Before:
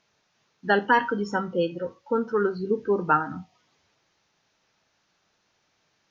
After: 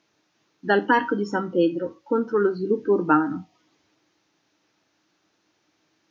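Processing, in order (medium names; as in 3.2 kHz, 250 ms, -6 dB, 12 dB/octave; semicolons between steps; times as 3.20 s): high-pass 81 Hz; peaking EQ 310 Hz +15 dB 0.36 oct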